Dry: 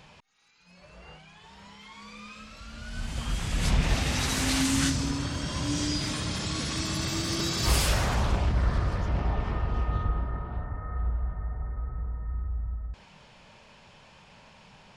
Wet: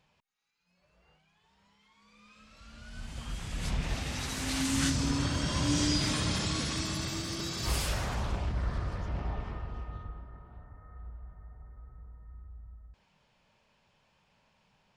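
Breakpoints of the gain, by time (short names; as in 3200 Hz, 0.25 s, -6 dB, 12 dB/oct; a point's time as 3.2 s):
1.99 s -18 dB
2.67 s -8 dB
4.38 s -8 dB
5.21 s +1 dB
6.32 s +1 dB
7.35 s -7 dB
9.33 s -7 dB
10.24 s -16 dB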